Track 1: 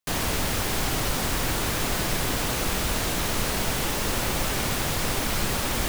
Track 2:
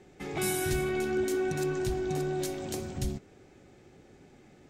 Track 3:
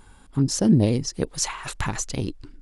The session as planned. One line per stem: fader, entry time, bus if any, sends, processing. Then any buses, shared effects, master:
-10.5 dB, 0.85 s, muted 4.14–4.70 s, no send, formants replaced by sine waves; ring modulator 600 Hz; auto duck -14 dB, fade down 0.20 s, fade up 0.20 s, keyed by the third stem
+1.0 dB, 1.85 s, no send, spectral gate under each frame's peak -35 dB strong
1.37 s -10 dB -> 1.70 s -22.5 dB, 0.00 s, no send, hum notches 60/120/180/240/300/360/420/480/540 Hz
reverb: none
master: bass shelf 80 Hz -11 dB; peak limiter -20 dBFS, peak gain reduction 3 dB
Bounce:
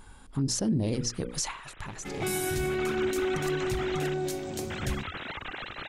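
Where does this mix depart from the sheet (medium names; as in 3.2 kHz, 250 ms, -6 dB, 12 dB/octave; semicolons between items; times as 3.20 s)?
stem 2: missing spectral gate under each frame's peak -35 dB strong; stem 3 -10.0 dB -> 0.0 dB; master: missing bass shelf 80 Hz -11 dB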